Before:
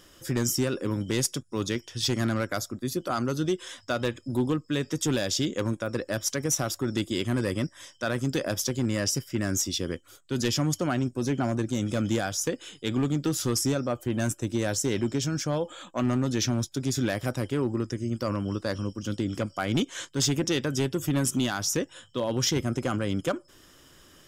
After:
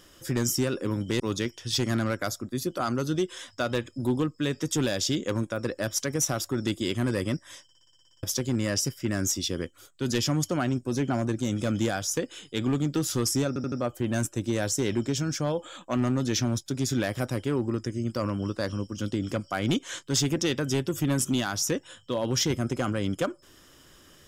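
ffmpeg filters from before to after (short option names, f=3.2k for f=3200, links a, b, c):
-filter_complex "[0:a]asplit=15[a][b][c][d][e][f][g][h][i][j][k][l][m][n][o];[a]atrim=end=1.202[p];[b]atrim=start=1.498:end=7.992[q];[c]atrim=start=7.928:end=7.992[r];[d]atrim=start=7.928:end=7.992[s];[e]atrim=start=7.928:end=7.992[t];[f]atrim=start=7.928:end=7.992[u];[g]atrim=start=7.928:end=7.992[v];[h]atrim=start=7.928:end=7.992[w];[i]atrim=start=7.928:end=7.992[x];[j]atrim=start=7.928:end=7.992[y];[k]atrim=start=7.928:end=7.992[z];[l]atrim=start=8.528:end=13.862[aa];[m]atrim=start=13.778:end=13.862[ab];[n]atrim=start=13.778:end=13.862[ac];[o]atrim=start=13.778[ad];[p][q]acrossfade=d=0.004:c1=hsin:c2=hsin[ae];[ae][r]acrossfade=d=0.004:c1=hsin:c2=hsin[af];[af][s]acrossfade=d=0.004:c1=hsin:c2=hsin[ag];[ag][t]acrossfade=d=0.004:c1=hsin:c2=hsin[ah];[ah][u]acrossfade=d=0.004:c1=hsin:c2=hsin[ai];[ai][v]acrossfade=d=0.004:c1=hsin:c2=hsin[aj];[aj][w]acrossfade=d=0.004:c1=hsin:c2=hsin[ak];[ak][x]acrossfade=d=0.004:c1=hsin:c2=hsin[al];[al][y]acrossfade=d=0.004:c1=hsin:c2=hsin[am];[am][z]acrossfade=d=0.004:c1=hsin:c2=hsin[an];[an][aa]acrossfade=d=0.004:c1=hsin:c2=hsin[ao];[ao][ab]acrossfade=d=0.004:c1=hsin:c2=hsin[ap];[ap][ac]acrossfade=d=0.004:c1=hsin:c2=hsin[aq];[aq][ad]acrossfade=d=0.004:c1=hsin:c2=hsin"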